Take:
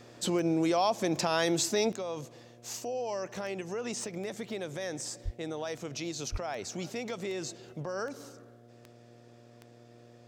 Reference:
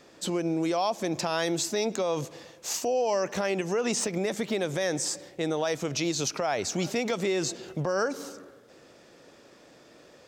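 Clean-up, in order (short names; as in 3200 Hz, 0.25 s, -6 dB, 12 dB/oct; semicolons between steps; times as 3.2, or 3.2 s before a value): de-click; de-hum 118.6 Hz, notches 6; de-plosive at 5.24/6.31; gain correction +8.5 dB, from 1.92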